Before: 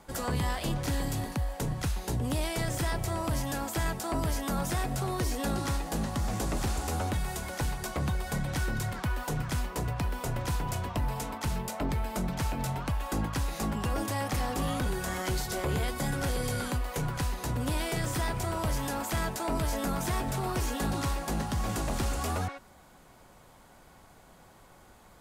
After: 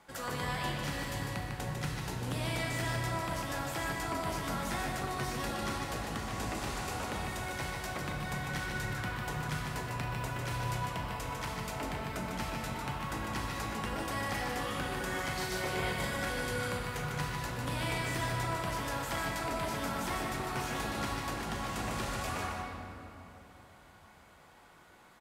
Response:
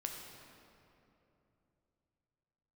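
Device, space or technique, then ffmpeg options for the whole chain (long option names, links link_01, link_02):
PA in a hall: -filter_complex "[0:a]asettb=1/sr,asplit=3[link_01][link_02][link_03];[link_01]atrim=end=15.364[link_04];[link_02]atrim=start=15.36:end=16.14,asetpts=PTS-STARTPTS,afade=type=in:duration=0.004:curve=qsin,afade=type=out:start_time=0.776:duration=0.004:curve=qsin,asplit=2[link_05][link_06];[link_06]adelay=38,volume=-4.5dB[link_07];[link_05][link_07]amix=inputs=2:normalize=0,atrim=end_sample=34398[link_08];[link_03]atrim=start=16.136[link_09];[link_04][link_08]acrossfade=duration=0.004:curve1=hsin:curve2=qsin[link_10];[link_10][link_09]acrossfade=duration=0.004:curve1=qsin:curve2=hsin,highpass=frequency=100:poles=1,equalizer=frequency=2100:width_type=o:width=2.5:gain=8,aecho=1:1:150:0.562[link_11];[1:a]atrim=start_sample=2205[link_12];[link_11][link_12]afir=irnorm=-1:irlink=0,volume=-6.5dB"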